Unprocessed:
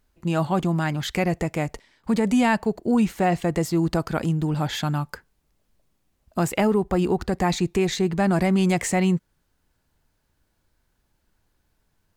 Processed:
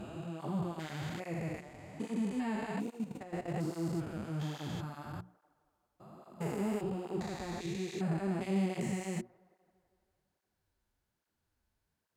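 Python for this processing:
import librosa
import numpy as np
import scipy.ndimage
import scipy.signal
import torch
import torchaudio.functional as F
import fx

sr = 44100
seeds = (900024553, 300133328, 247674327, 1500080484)

y = fx.spec_steps(x, sr, hold_ms=400)
y = fx.hum_notches(y, sr, base_hz=60, count=6)
y = fx.level_steps(y, sr, step_db=13, at=(2.9, 3.54))
y = fx.echo_wet_bandpass(y, sr, ms=167, feedback_pct=64, hz=740.0, wet_db=-22.5)
y = fx.flanger_cancel(y, sr, hz=1.2, depth_ms=7.6)
y = F.gain(torch.from_numpy(y), -7.0).numpy()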